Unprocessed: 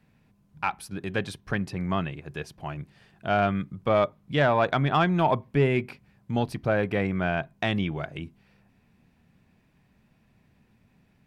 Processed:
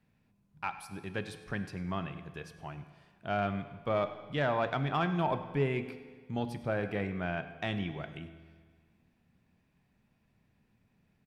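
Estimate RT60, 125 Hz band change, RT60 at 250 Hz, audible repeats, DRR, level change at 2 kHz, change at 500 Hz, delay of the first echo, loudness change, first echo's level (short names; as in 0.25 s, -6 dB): 1.6 s, -8.0 dB, 1.6 s, 1, 9.5 dB, -8.0 dB, -8.0 dB, 0.1 s, -8.0 dB, -18.0 dB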